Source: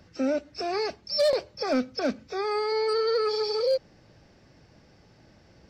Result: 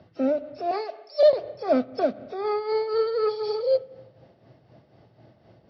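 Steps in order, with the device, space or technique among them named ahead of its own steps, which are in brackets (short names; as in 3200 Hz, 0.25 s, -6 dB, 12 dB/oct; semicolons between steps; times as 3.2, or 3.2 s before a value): 0.71–1.23 HPF 460 Hz 24 dB/oct; combo amplifier with spring reverb and tremolo (spring tank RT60 1.1 s, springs 31/53 ms, chirp 80 ms, DRR 15 dB; tremolo 4 Hz, depth 56%; speaker cabinet 100–3900 Hz, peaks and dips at 120 Hz +9 dB, 380 Hz +3 dB, 660 Hz +9 dB, 1600 Hz -5 dB, 2400 Hz -7 dB); gain +1.5 dB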